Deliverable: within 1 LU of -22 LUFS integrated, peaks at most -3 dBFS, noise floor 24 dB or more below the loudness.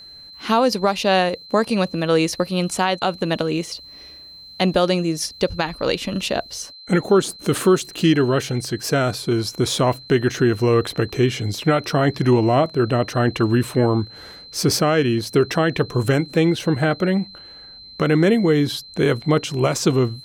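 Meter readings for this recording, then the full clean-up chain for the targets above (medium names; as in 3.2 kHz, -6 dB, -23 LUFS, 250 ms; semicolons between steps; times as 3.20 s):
steady tone 4.1 kHz; tone level -39 dBFS; loudness -20.0 LUFS; peak level -6.0 dBFS; loudness target -22.0 LUFS
-> band-stop 4.1 kHz, Q 30; trim -2 dB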